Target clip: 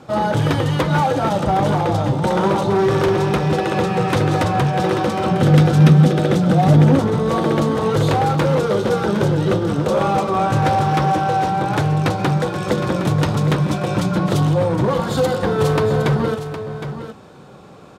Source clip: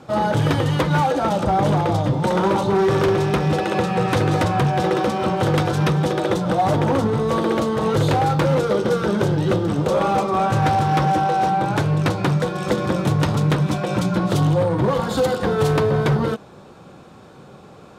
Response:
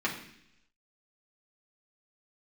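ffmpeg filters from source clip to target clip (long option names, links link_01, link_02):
-filter_complex "[0:a]asettb=1/sr,asplit=3[link_01][link_02][link_03];[link_01]atrim=end=5.314[link_04];[link_02]atrim=start=5.31:end=6.99,asetpts=PTS-STARTPTS,afade=type=in:duration=0.004:curve=qsin,afade=type=out:start_time=1.676:duration=0.004:curve=qsin,equalizer=frequency=160:width_type=o:width=0.33:gain=11,equalizer=frequency=250:width_type=o:width=0.33:gain=10,equalizer=frequency=1000:width_type=o:width=0.33:gain=-8[link_05];[link_03]atrim=start=6.986[link_06];[link_04][link_05]acrossfade=duration=0.004:curve1=hsin:curve2=qsin[link_07];[link_07][link_06]acrossfade=duration=0.004:curve1=qsin:curve2=hsin,aecho=1:1:763:0.299,volume=1dB"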